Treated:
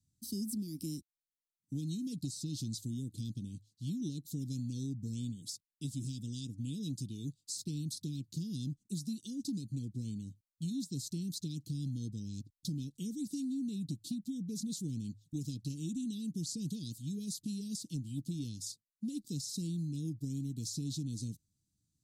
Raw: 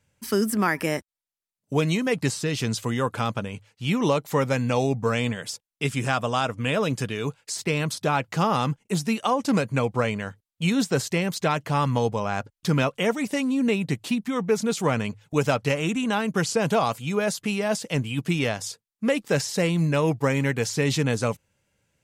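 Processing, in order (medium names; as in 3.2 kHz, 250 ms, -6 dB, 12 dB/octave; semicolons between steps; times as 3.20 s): Chebyshev band-stop 310–3900 Hz, order 4; compression 10:1, threshold -26 dBFS, peak gain reduction 7.5 dB; trim -8 dB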